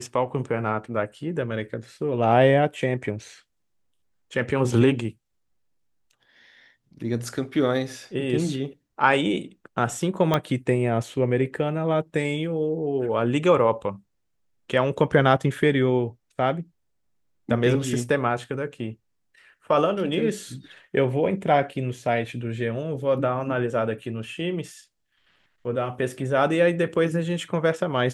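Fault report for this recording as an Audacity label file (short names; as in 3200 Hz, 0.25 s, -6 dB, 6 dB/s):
10.340000	10.340000	pop -8 dBFS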